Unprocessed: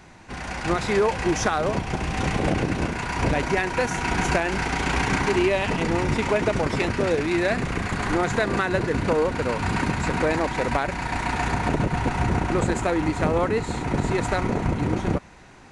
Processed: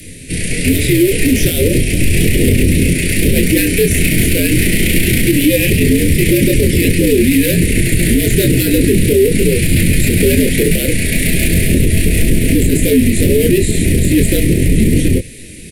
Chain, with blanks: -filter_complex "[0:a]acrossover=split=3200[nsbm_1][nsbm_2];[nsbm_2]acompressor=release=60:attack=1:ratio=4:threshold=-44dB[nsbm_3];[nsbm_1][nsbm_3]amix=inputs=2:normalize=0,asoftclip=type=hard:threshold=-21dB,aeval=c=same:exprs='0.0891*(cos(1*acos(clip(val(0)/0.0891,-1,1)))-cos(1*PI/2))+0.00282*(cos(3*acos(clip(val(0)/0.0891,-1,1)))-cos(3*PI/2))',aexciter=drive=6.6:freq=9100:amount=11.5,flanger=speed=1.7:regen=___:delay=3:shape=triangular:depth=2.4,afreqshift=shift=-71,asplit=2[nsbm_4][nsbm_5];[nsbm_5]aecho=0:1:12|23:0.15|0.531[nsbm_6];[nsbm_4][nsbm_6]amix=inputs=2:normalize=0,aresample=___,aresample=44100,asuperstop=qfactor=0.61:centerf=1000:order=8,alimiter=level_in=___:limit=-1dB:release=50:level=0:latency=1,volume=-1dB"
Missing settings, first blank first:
-81, 32000, 22.5dB